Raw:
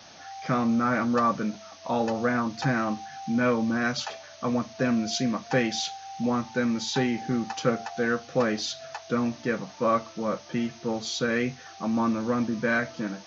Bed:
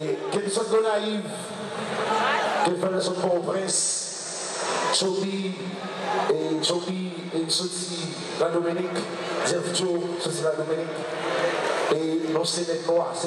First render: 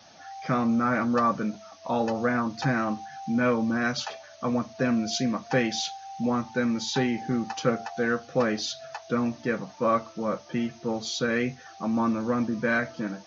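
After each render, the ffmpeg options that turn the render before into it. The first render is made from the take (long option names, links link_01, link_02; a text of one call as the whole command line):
ffmpeg -i in.wav -af "afftdn=noise_reduction=6:noise_floor=-47" out.wav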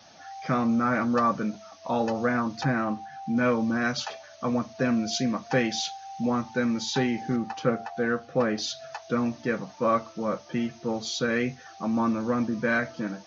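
ffmpeg -i in.wav -filter_complex "[0:a]asettb=1/sr,asplit=3[link_01][link_02][link_03];[link_01]atrim=end=2.634[link_04];[link_02]atrim=start=2.63:end=3.37,asetpts=PTS-STARTPTS,afade=type=in:duration=0.004:curve=qsin,afade=type=out:start_time=0.736:duration=0.004:curve=qsin,lowpass=frequency=2700:poles=1[link_05];[link_03]atrim=start=3.366[link_06];[link_04][link_05]acrossfade=duration=0.004:curve1=hsin:curve2=qsin[link_07];[link_07][link_06]acrossfade=duration=0.004:curve1=qsin:curve2=hsin,asettb=1/sr,asplit=3[link_08][link_09][link_10];[link_08]atrim=end=7.364[link_11];[link_09]atrim=start=7.36:end=8.58,asetpts=PTS-STARTPTS,afade=type=in:duration=0.004:curve=qsin,afade=type=out:start_time=1.216:duration=0.004:curve=qsin,lowpass=frequency=2400:poles=1[link_12];[link_10]atrim=start=8.576[link_13];[link_11][link_12]acrossfade=duration=0.004:curve1=hsin:curve2=qsin[link_14];[link_14][link_13]acrossfade=duration=0.004:curve1=qsin:curve2=hsin" out.wav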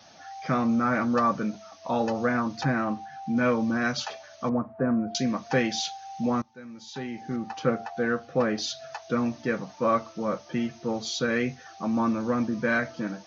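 ffmpeg -i in.wav -filter_complex "[0:a]asettb=1/sr,asplit=3[link_01][link_02][link_03];[link_01]atrim=end=4.494[link_04];[link_02]atrim=start=4.49:end=5.15,asetpts=PTS-STARTPTS,afade=type=in:duration=0.004:curve=qsin,afade=type=out:start_time=0.656:duration=0.004:curve=qsin,lowpass=frequency=1400:width=0.5412,lowpass=frequency=1400:width=1.3066[link_05];[link_03]atrim=start=5.146[link_06];[link_04][link_05]acrossfade=duration=0.004:curve1=hsin:curve2=qsin[link_07];[link_07][link_06]acrossfade=duration=0.004:curve1=qsin:curve2=hsin,asplit=2[link_08][link_09];[link_08]atrim=end=6.42,asetpts=PTS-STARTPTS,afade=type=out:start_time=6.416:duration=0.004:curve=hsin:silence=0.1[link_10];[link_09]atrim=start=6.42,asetpts=PTS-STARTPTS,afade=type=in:duration=1.21:curve=qua:silence=0.1[link_11];[link_10][link_11]concat=n=2:v=0:a=1" out.wav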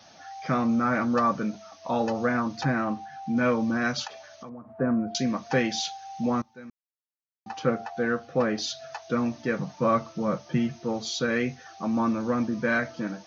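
ffmpeg -i in.wav -filter_complex "[0:a]asettb=1/sr,asplit=3[link_01][link_02][link_03];[link_01]atrim=end=4.074[link_04];[link_02]atrim=start=4.07:end=4.7,asetpts=PTS-STARTPTS,afade=type=in:duration=0.004:curve=qsin,afade=type=out:start_time=0.626:duration=0.004:curve=qsin,acompressor=threshold=-38dB:ratio=10:attack=3.2:release=140:knee=1:detection=peak[link_05];[link_03]atrim=start=4.696[link_06];[link_04][link_05]acrossfade=duration=0.004:curve1=hsin:curve2=qsin[link_07];[link_07][link_06]acrossfade=duration=0.004:curve1=qsin:curve2=hsin,asettb=1/sr,asplit=3[link_08][link_09][link_10];[link_08]atrim=end=9.584[link_11];[link_09]atrim=start=9.58:end=10.76,asetpts=PTS-STARTPTS,afade=type=in:duration=0.004:curve=qsin,afade=type=out:start_time=1.176:duration=0.004:curve=qsin,equalizer=frequency=150:width=2.1:gain=11[link_12];[link_10]atrim=start=10.756[link_13];[link_11][link_12]acrossfade=duration=0.004:curve1=hsin:curve2=qsin[link_14];[link_14][link_13]acrossfade=duration=0.004:curve1=qsin:curve2=hsin,asplit=3[link_15][link_16][link_17];[link_15]atrim=end=6.7,asetpts=PTS-STARTPTS,afade=type=out:start_time=6.696:duration=0.004:curve=hsin[link_18];[link_16]atrim=start=6.7:end=7.46,asetpts=PTS-STARTPTS,volume=0[link_19];[link_17]atrim=start=7.46,asetpts=PTS-STARTPTS,afade=type=in:duration=0.004:curve=hsin[link_20];[link_18][link_19][link_20]concat=n=3:v=0:a=1" out.wav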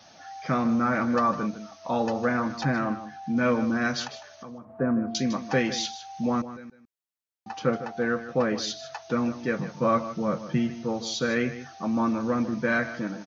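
ffmpeg -i in.wav -af "aecho=1:1:154:0.224" out.wav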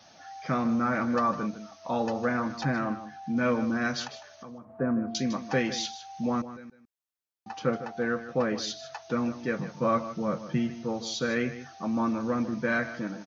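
ffmpeg -i in.wav -af "volume=-2.5dB" out.wav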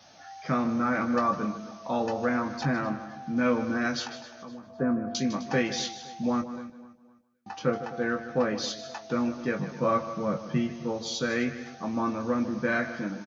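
ffmpeg -i in.wav -filter_complex "[0:a]asplit=2[link_01][link_02];[link_02]adelay=20,volume=-7.5dB[link_03];[link_01][link_03]amix=inputs=2:normalize=0,aecho=1:1:257|514|771:0.141|0.0523|0.0193" out.wav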